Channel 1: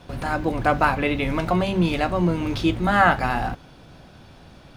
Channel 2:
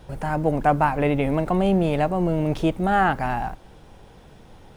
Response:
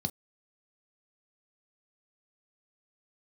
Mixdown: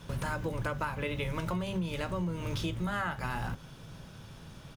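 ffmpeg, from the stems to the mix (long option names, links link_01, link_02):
-filter_complex "[0:a]highshelf=frequency=5300:gain=10,volume=-3.5dB,asplit=2[link_01][link_02];[link_02]volume=-15.5dB[link_03];[1:a]adelay=5.2,volume=-14.5dB[link_04];[2:a]atrim=start_sample=2205[link_05];[link_03][link_05]afir=irnorm=-1:irlink=0[link_06];[link_01][link_04][link_06]amix=inputs=3:normalize=0,bandreject=frequency=730:width=12,acompressor=threshold=-30dB:ratio=10"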